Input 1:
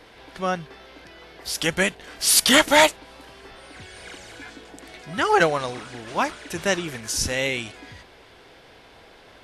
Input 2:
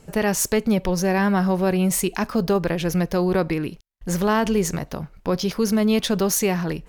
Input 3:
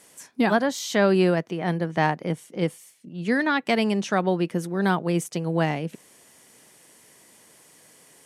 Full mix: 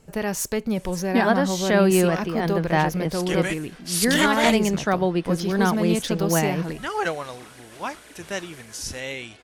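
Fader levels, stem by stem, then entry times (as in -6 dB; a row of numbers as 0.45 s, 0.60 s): -7.5 dB, -5.0 dB, +1.0 dB; 1.65 s, 0.00 s, 0.75 s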